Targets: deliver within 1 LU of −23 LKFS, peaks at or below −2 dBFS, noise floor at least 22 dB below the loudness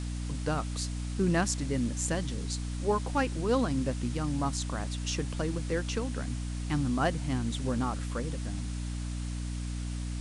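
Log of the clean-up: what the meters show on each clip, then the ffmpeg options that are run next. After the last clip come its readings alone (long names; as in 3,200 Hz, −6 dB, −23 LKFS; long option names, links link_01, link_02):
mains hum 60 Hz; hum harmonics up to 300 Hz; level of the hum −32 dBFS; background noise floor −35 dBFS; target noise floor −54 dBFS; integrated loudness −32.0 LKFS; sample peak −15.0 dBFS; target loudness −23.0 LKFS
→ -af "bandreject=frequency=60:width_type=h:width=4,bandreject=frequency=120:width_type=h:width=4,bandreject=frequency=180:width_type=h:width=4,bandreject=frequency=240:width_type=h:width=4,bandreject=frequency=300:width_type=h:width=4"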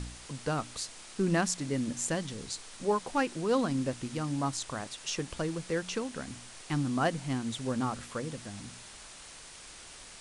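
mains hum none found; background noise floor −49 dBFS; target noise floor −55 dBFS
→ -af "afftdn=noise_reduction=6:noise_floor=-49"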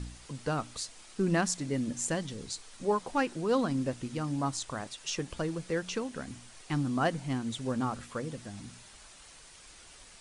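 background noise floor −54 dBFS; target noise floor −55 dBFS
→ -af "afftdn=noise_reduction=6:noise_floor=-54"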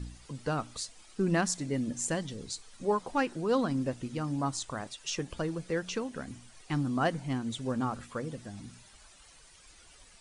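background noise floor −57 dBFS; integrated loudness −33.5 LKFS; sample peak −16.0 dBFS; target loudness −23.0 LKFS
→ -af "volume=10.5dB"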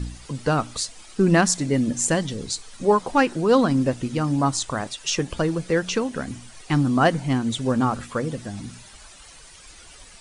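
integrated loudness −23.0 LKFS; sample peak −5.5 dBFS; background noise floor −47 dBFS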